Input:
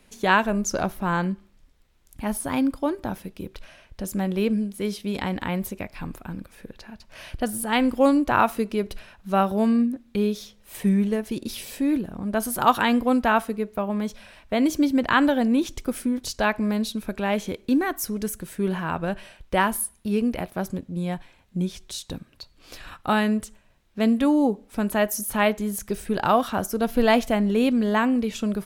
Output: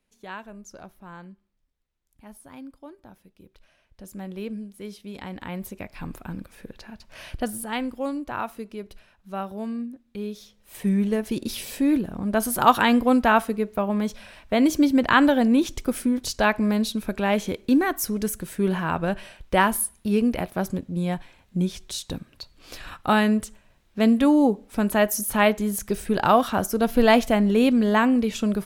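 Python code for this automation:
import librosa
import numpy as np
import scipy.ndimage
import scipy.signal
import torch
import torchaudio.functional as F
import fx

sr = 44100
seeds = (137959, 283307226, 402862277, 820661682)

y = fx.gain(x, sr, db=fx.line((3.18, -18.5), (4.28, -10.0), (5.17, -10.0), (6.17, 0.0), (7.35, 0.0), (8.0, -10.5), (10.09, -10.5), (11.26, 2.0)))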